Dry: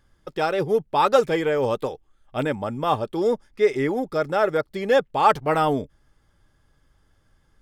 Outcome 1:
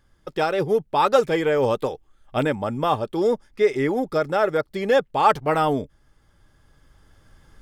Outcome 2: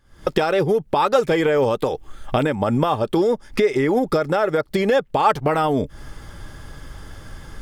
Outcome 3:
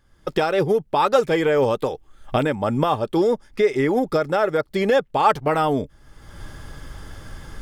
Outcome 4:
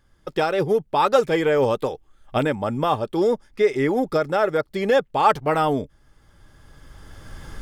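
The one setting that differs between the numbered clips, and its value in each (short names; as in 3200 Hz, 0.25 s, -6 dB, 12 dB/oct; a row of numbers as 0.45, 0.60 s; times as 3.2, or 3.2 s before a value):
recorder AGC, rising by: 5.6, 88, 34, 14 dB/s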